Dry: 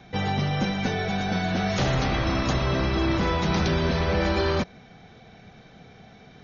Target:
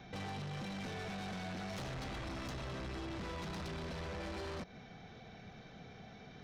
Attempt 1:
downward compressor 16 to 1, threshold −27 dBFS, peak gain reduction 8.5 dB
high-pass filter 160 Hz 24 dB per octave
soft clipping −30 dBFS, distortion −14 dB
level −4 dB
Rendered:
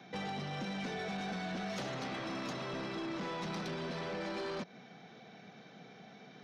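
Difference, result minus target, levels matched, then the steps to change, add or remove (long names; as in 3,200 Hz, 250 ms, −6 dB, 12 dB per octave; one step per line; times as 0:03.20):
125 Hz band −5.5 dB; soft clipping: distortion −6 dB
change: soft clipping −36.5 dBFS, distortion −8 dB
remove: high-pass filter 160 Hz 24 dB per octave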